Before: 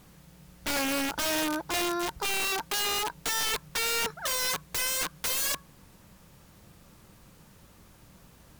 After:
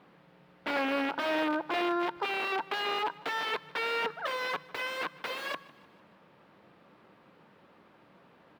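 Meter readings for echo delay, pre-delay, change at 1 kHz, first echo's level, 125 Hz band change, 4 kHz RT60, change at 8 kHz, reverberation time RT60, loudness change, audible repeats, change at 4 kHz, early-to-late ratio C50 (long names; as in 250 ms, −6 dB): 152 ms, no reverb audible, +1.5 dB, −21.0 dB, −10.5 dB, no reverb audible, −24.5 dB, no reverb audible, −4.0 dB, 3, −7.0 dB, no reverb audible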